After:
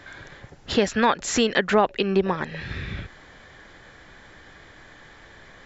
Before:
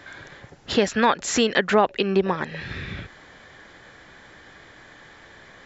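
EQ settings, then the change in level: low shelf 61 Hz +11 dB; -1.0 dB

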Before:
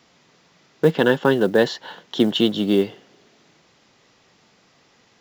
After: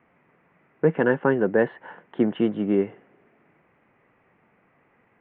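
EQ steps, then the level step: steep low-pass 2400 Hz 48 dB/oct; -3.5 dB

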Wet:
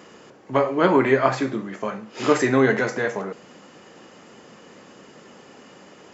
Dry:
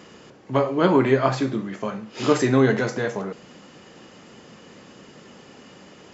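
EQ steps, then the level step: bell 3800 Hz -5 dB 1.7 oct; dynamic EQ 2000 Hz, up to +5 dB, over -43 dBFS, Q 1.9; low shelf 190 Hz -10.5 dB; +2.5 dB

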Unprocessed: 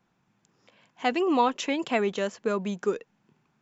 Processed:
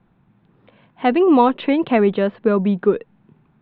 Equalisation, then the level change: elliptic low-pass 3900 Hz, stop band 40 dB; tilt -3 dB/oct; +7.5 dB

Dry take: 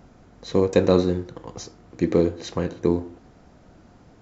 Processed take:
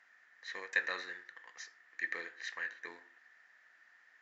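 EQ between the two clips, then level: band-pass 1800 Hz, Q 14; tilt +4.5 dB/oct; +8.5 dB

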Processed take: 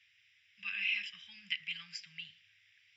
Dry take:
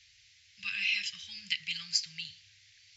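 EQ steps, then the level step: polynomial smoothing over 25 samples; HPF 210 Hz 12 dB/oct; -1.5 dB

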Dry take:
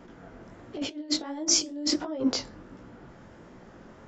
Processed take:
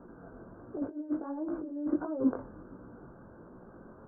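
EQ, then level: rippled Chebyshev low-pass 1600 Hz, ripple 3 dB; air absorption 230 m; 0.0 dB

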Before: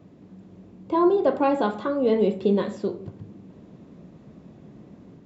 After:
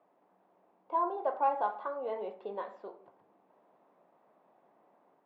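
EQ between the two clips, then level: ladder band-pass 960 Hz, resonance 45%; +3.0 dB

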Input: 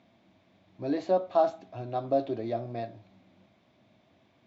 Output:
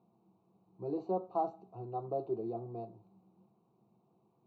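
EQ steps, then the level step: running mean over 26 samples; low shelf 110 Hz -7.5 dB; fixed phaser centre 400 Hz, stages 8; 0.0 dB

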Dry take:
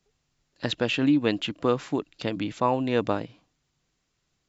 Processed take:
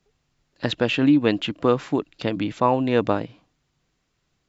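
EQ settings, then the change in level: high shelf 5100 Hz -8 dB; +4.5 dB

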